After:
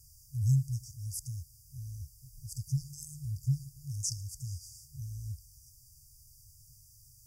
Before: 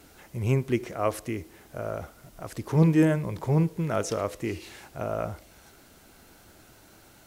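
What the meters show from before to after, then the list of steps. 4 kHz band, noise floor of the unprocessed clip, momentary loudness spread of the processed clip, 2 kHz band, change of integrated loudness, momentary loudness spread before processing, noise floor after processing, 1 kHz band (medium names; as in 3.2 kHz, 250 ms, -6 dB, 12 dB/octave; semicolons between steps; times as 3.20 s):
-3.5 dB, -55 dBFS, 19 LU, under -40 dB, -9.0 dB, 18 LU, -59 dBFS, under -40 dB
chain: dynamic bell 7.5 kHz, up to +4 dB, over -53 dBFS, Q 1.2; FFT band-reject 150–4600 Hz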